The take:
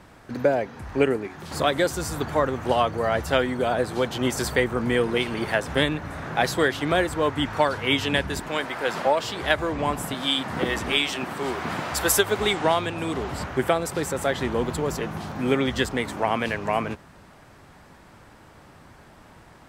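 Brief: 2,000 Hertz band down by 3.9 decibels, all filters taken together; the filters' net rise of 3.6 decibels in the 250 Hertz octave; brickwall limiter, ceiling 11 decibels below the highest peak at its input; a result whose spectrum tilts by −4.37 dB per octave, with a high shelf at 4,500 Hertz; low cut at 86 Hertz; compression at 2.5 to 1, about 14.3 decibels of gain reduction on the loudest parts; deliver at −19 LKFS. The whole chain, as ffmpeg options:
ffmpeg -i in.wav -af "highpass=86,equalizer=frequency=250:width_type=o:gain=4.5,equalizer=frequency=2000:width_type=o:gain=-6,highshelf=frequency=4500:gain=5.5,acompressor=threshold=-37dB:ratio=2.5,volume=19.5dB,alimiter=limit=-9.5dB:level=0:latency=1" out.wav

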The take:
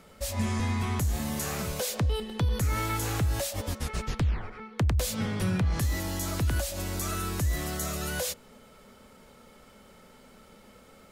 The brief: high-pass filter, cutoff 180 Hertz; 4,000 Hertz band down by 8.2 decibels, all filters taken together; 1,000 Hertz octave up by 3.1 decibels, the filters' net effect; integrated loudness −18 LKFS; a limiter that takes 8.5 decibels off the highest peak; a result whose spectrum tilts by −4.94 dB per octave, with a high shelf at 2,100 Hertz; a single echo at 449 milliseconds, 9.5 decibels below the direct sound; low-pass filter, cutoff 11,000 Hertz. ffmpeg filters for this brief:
ffmpeg -i in.wav -af "highpass=180,lowpass=11000,equalizer=frequency=1000:width_type=o:gain=6,highshelf=frequency=2100:gain=-6.5,equalizer=frequency=4000:width_type=o:gain=-4.5,alimiter=level_in=1.5dB:limit=-24dB:level=0:latency=1,volume=-1.5dB,aecho=1:1:449:0.335,volume=17.5dB" out.wav

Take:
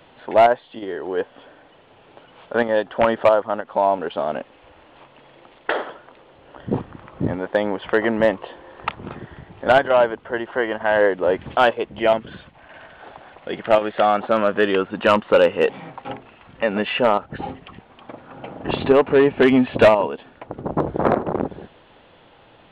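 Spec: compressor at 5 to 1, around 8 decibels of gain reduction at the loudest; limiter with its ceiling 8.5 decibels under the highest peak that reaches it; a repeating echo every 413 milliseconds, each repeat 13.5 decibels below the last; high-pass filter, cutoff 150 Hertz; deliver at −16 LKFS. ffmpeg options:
ffmpeg -i in.wav -af "highpass=150,acompressor=threshold=-18dB:ratio=5,alimiter=limit=-15dB:level=0:latency=1,aecho=1:1:413|826:0.211|0.0444,volume=12dB" out.wav

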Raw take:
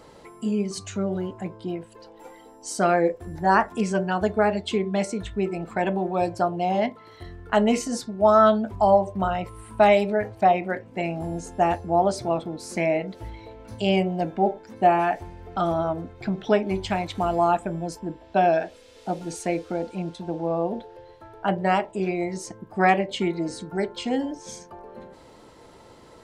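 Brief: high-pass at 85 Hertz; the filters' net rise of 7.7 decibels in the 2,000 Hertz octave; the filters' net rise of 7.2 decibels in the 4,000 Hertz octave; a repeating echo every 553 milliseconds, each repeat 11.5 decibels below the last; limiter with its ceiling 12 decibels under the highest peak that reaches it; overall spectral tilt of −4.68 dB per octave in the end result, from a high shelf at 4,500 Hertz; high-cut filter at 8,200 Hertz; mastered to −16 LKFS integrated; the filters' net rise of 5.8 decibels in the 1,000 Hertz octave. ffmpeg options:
ffmpeg -i in.wav -af "highpass=85,lowpass=8200,equalizer=frequency=1000:width_type=o:gain=7,equalizer=frequency=2000:width_type=o:gain=5.5,equalizer=frequency=4000:width_type=o:gain=5.5,highshelf=frequency=4500:gain=3.5,alimiter=limit=-11.5dB:level=0:latency=1,aecho=1:1:553|1106|1659:0.266|0.0718|0.0194,volume=8.5dB" out.wav

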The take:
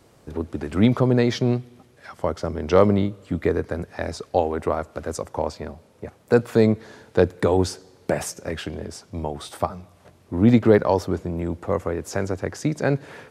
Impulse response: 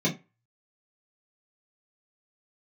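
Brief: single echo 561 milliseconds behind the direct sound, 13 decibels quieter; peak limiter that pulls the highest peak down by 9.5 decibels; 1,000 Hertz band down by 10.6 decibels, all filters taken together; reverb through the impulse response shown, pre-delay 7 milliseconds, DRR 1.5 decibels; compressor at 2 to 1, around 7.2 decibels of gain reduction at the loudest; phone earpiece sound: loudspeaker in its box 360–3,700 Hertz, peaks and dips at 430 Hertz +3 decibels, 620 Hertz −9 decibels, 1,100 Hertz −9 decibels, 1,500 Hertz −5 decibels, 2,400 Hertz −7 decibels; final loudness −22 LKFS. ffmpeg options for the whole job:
-filter_complex "[0:a]equalizer=frequency=1000:width_type=o:gain=-8,acompressor=threshold=-24dB:ratio=2,alimiter=limit=-20dB:level=0:latency=1,aecho=1:1:561:0.224,asplit=2[link_01][link_02];[1:a]atrim=start_sample=2205,adelay=7[link_03];[link_02][link_03]afir=irnorm=-1:irlink=0,volume=-12dB[link_04];[link_01][link_04]amix=inputs=2:normalize=0,highpass=360,equalizer=frequency=430:width_type=q:width=4:gain=3,equalizer=frequency=620:width_type=q:width=4:gain=-9,equalizer=frequency=1100:width_type=q:width=4:gain=-9,equalizer=frequency=1500:width_type=q:width=4:gain=-5,equalizer=frequency=2400:width_type=q:width=4:gain=-7,lowpass=frequency=3700:width=0.5412,lowpass=frequency=3700:width=1.3066,volume=9dB"

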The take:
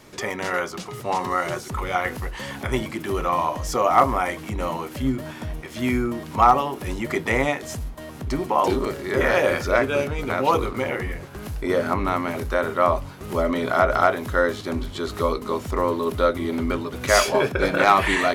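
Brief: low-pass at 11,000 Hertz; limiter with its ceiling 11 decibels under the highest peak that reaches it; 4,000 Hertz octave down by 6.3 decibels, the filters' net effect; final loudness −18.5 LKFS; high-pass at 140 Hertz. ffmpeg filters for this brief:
ffmpeg -i in.wav -af "highpass=140,lowpass=11000,equalizer=frequency=4000:width_type=o:gain=-8.5,volume=9dB,alimiter=limit=-6.5dB:level=0:latency=1" out.wav

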